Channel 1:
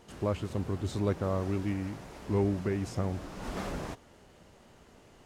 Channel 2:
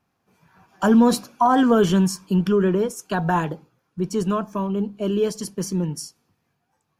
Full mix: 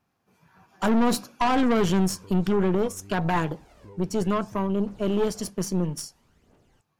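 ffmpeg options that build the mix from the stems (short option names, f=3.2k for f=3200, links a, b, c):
-filter_complex "[0:a]aphaser=in_gain=1:out_gain=1:delay=2.4:decay=0.61:speed=0.6:type=triangular,acompressor=threshold=-34dB:ratio=12,adelay=1550,volume=-10dB[a];[1:a]aeval=exprs='(tanh(10*val(0)+0.65)-tanh(0.65))/10':c=same,volume=1.5dB[b];[a][b]amix=inputs=2:normalize=0"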